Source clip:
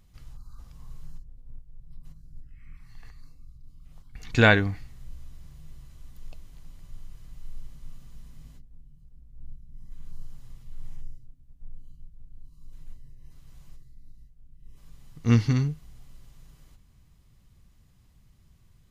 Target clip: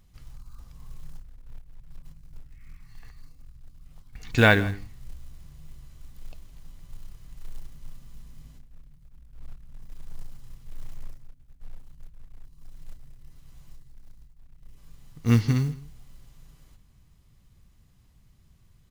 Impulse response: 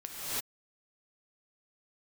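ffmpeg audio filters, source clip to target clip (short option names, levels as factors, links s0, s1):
-filter_complex "[0:a]acrusher=bits=7:mode=log:mix=0:aa=0.000001,asplit=2[s0][s1];[s1]aecho=0:1:162:0.112[s2];[s0][s2]amix=inputs=2:normalize=0"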